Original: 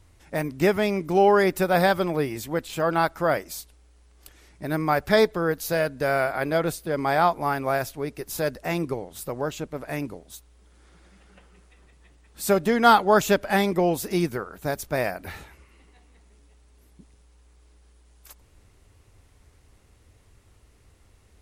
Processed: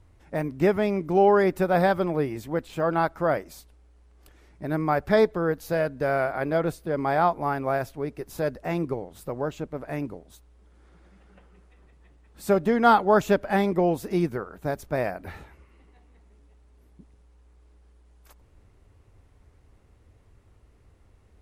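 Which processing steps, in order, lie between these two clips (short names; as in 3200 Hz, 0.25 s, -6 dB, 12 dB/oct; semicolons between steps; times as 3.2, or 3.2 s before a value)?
high shelf 2400 Hz -12 dB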